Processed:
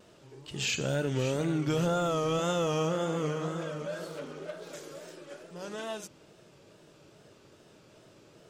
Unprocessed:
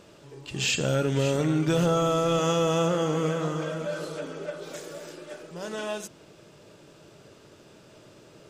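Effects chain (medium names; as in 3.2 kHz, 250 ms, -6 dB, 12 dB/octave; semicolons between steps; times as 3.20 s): 4.07–4.70 s: self-modulated delay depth 0.14 ms; wow and flutter 100 cents; trim -5 dB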